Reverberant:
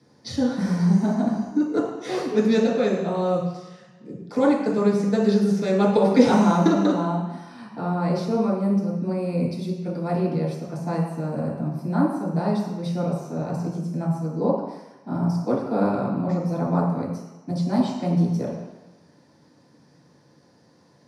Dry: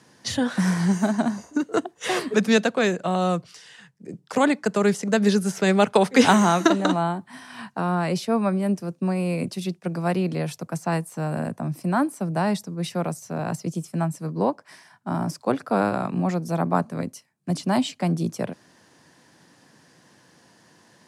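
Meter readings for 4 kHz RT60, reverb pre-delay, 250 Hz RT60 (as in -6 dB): 1.3 s, 3 ms, 1.0 s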